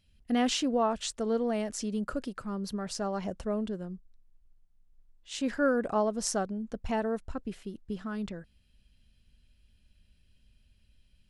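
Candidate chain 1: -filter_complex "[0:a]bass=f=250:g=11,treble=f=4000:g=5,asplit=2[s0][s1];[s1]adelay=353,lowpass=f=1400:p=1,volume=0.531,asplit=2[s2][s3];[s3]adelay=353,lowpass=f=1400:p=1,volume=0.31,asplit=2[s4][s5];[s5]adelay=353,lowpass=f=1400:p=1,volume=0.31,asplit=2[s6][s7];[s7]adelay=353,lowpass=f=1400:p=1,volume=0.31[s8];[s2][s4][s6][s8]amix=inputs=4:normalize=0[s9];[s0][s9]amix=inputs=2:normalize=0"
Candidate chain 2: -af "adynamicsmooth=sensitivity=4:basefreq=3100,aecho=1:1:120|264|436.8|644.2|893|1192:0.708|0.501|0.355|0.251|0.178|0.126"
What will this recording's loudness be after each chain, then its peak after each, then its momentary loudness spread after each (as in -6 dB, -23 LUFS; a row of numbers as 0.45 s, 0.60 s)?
-27.5 LUFS, -30.0 LUFS; -8.0 dBFS, -12.5 dBFS; 13 LU, 18 LU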